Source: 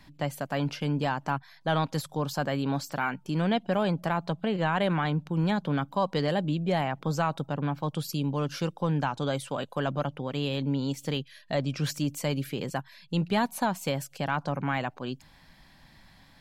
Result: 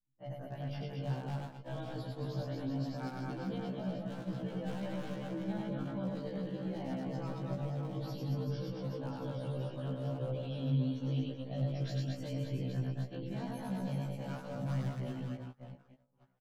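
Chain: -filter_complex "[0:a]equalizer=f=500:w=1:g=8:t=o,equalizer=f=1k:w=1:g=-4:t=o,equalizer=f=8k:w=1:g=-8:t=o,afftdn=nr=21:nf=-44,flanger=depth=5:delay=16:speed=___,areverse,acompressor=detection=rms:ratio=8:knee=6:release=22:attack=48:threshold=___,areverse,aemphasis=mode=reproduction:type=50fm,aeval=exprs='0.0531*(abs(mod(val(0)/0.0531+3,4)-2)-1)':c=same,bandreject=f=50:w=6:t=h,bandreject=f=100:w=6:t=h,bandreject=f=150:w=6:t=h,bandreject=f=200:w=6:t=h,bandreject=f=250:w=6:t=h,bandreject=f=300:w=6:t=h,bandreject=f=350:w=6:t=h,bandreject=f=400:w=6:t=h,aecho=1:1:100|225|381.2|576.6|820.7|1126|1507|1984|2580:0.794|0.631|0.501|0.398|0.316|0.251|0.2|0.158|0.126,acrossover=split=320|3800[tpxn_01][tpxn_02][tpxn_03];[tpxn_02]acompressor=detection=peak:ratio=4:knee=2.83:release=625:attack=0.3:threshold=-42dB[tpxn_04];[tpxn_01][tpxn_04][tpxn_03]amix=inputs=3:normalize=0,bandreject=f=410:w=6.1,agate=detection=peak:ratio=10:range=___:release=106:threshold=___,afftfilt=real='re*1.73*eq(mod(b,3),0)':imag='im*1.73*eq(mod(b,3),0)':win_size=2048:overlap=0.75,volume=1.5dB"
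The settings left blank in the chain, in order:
0.47, -36dB, -29dB, -41dB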